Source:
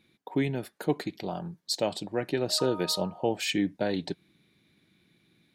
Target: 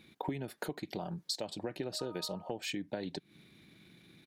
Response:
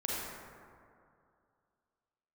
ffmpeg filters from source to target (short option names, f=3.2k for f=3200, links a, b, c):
-af "acompressor=threshold=-41dB:ratio=12,atempo=1.3,volume=6.5dB"